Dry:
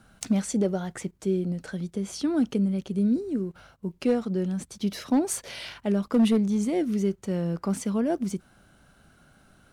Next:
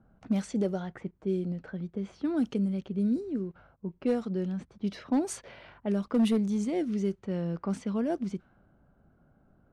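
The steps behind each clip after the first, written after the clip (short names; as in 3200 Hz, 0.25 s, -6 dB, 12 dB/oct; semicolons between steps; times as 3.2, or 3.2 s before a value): low-pass opened by the level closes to 760 Hz, open at -19.5 dBFS; gain -4 dB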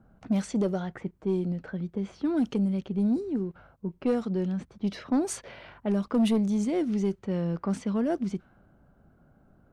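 soft clip -21 dBFS, distortion -20 dB; gain +3.5 dB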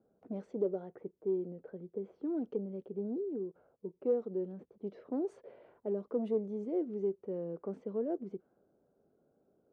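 band-pass 440 Hz, Q 3.5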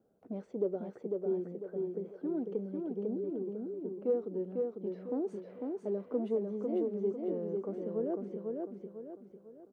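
feedback echo 0.499 s, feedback 40%, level -3.5 dB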